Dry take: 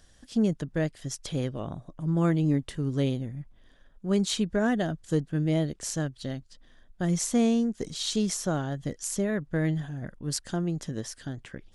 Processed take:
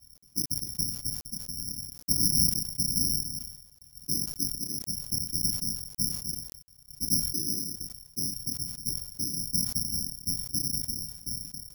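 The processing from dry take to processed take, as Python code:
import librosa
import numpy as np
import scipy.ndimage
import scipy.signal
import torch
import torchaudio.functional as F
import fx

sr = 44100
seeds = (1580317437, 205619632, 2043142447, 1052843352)

y = fx.spec_dropout(x, sr, seeds[0], share_pct=32)
y = scipy.signal.sosfilt(scipy.signal.cheby2(4, 70, 790.0, 'lowpass', fs=sr, output='sos'), y)
y = fx.hum_notches(y, sr, base_hz=50, count=2)
y = fx.chorus_voices(y, sr, voices=2, hz=0.19, base_ms=30, depth_ms=2.5, mix_pct=20)
y = fx.whisperise(y, sr, seeds[1])
y = (np.kron(y[::8], np.eye(8)[0]) * 8)[:len(y)]
y = fx.quant_dither(y, sr, seeds[2], bits=10, dither='none')
y = fx.sustainer(y, sr, db_per_s=66.0)
y = y * librosa.db_to_amplitude(-4.0)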